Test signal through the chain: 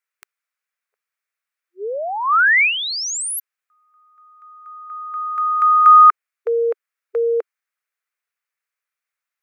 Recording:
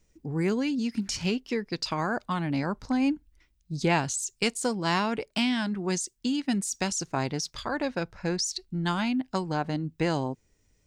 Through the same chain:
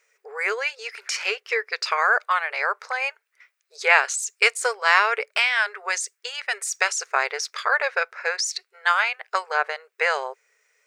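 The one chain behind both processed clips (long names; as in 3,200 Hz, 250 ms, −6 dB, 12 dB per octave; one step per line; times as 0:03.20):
linear-phase brick-wall high-pass 400 Hz
flat-topped bell 1,700 Hz +11 dB 1.3 octaves
level +4 dB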